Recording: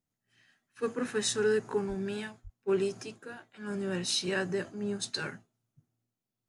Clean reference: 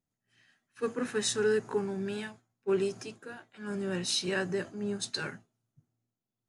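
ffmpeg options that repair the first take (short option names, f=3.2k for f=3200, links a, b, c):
-filter_complex "[0:a]asplit=3[a][b][c];[a]afade=t=out:st=1.88:d=0.02[d];[b]highpass=f=140:w=0.5412,highpass=f=140:w=1.3066,afade=t=in:st=1.88:d=0.02,afade=t=out:st=2:d=0.02[e];[c]afade=t=in:st=2:d=0.02[f];[d][e][f]amix=inputs=3:normalize=0,asplit=3[g][h][i];[g]afade=t=out:st=2.43:d=0.02[j];[h]highpass=f=140:w=0.5412,highpass=f=140:w=1.3066,afade=t=in:st=2.43:d=0.02,afade=t=out:st=2.55:d=0.02[k];[i]afade=t=in:st=2.55:d=0.02[l];[j][k][l]amix=inputs=3:normalize=0"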